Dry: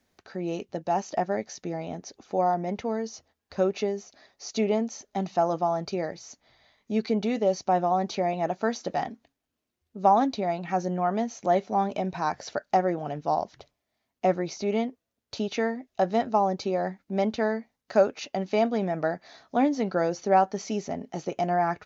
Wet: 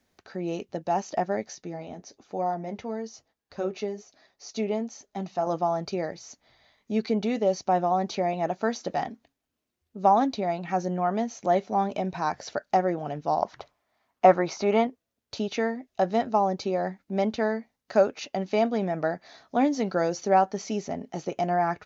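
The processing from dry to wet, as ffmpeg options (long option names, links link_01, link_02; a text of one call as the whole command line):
ffmpeg -i in.wav -filter_complex "[0:a]asettb=1/sr,asplit=3[link_01][link_02][link_03];[link_01]atrim=end=1.554[link_04];[link_02]atrim=start=1.55:end=5.47,asetpts=PTS-STARTPTS,afade=type=in:duration=0.004:curve=qsin,afade=type=out:start_time=3.916:duration=0.004:curve=qsin,flanger=delay=5.9:depth=3.7:regen=-59:speed=1.1:shape=sinusoidal[link_05];[link_03]atrim=start=5.466[link_06];[link_04][link_05]acrossfade=duration=0.004:curve1=hsin:curve2=qsin[link_07];[link_07][link_06]acrossfade=duration=0.004:curve1=qsin:curve2=hsin,asettb=1/sr,asplit=3[link_08][link_09][link_10];[link_08]atrim=end=13.424[link_11];[link_09]atrim=start=13.42:end=14.87,asetpts=PTS-STARTPTS,afade=type=in:duration=0.004:curve=qsin,afade=type=out:start_time=1.446:duration=0.004:curve=qsin,equalizer=frequency=1100:width=0.72:gain=12.5[link_12];[link_10]atrim=start=14.866[link_13];[link_11][link_12]acrossfade=duration=0.004:curve1=hsin:curve2=qsin[link_14];[link_14][link_13]acrossfade=duration=0.004:curve1=qsin:curve2=hsin,asettb=1/sr,asplit=3[link_15][link_16][link_17];[link_15]atrim=end=19.614[link_18];[link_16]atrim=start=19.61:end=20.33,asetpts=PTS-STARTPTS,afade=type=in:duration=0.004:curve=qsin,afade=type=out:start_time=0.716:duration=0.004:curve=qsin,highshelf=frequency=5800:gain=8.5[link_19];[link_17]atrim=start=20.326[link_20];[link_18][link_19]acrossfade=duration=0.004:curve1=hsin:curve2=qsin[link_21];[link_21][link_20]acrossfade=duration=0.004:curve1=qsin:curve2=hsin" out.wav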